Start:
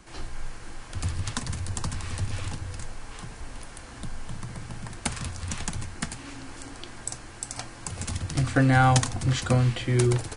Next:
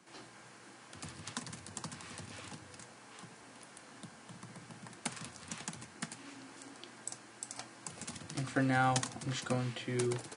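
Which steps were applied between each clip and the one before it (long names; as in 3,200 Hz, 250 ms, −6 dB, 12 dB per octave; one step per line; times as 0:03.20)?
high-pass filter 150 Hz 24 dB per octave
level −9 dB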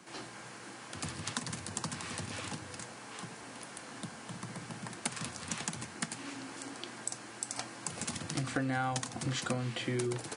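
downward compressor 4 to 1, threshold −39 dBFS, peak gain reduction 12 dB
level +7.5 dB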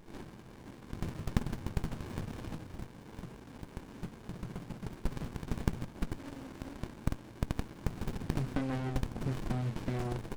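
windowed peak hold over 65 samples
level +2 dB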